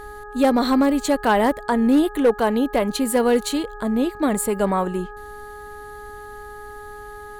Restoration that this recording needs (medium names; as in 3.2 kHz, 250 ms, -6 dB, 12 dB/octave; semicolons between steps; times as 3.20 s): clip repair -10 dBFS; de-hum 416.8 Hz, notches 4